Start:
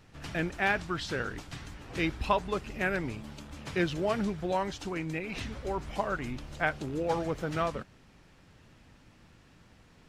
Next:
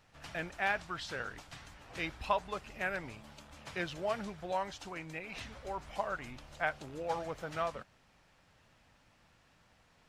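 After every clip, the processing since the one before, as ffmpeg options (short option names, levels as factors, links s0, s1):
-af "lowshelf=f=480:t=q:w=1.5:g=-6,volume=0.562"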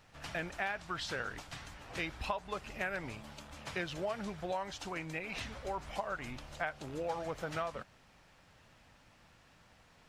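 -af "acompressor=threshold=0.0141:ratio=5,volume=1.5"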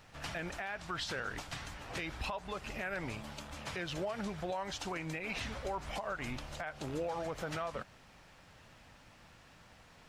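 -af "alimiter=level_in=2.82:limit=0.0631:level=0:latency=1:release=91,volume=0.355,volume=1.58"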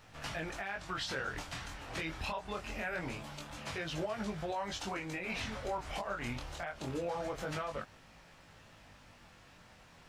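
-af "flanger=delay=18.5:depth=6.6:speed=0.24,volume=1.5"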